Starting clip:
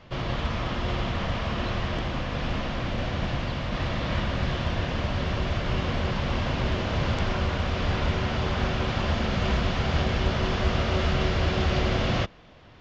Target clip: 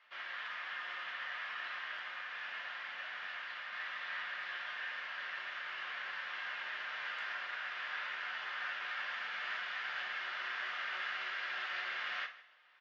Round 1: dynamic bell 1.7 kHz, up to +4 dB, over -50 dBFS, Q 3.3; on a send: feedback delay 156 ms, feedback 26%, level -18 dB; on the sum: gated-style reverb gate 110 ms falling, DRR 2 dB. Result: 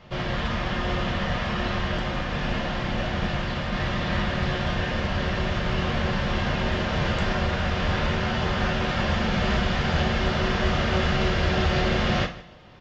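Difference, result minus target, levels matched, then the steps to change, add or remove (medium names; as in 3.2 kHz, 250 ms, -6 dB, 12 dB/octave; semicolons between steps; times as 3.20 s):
2 kHz band -6.0 dB
add after dynamic bell: ladder band-pass 2 kHz, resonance 35%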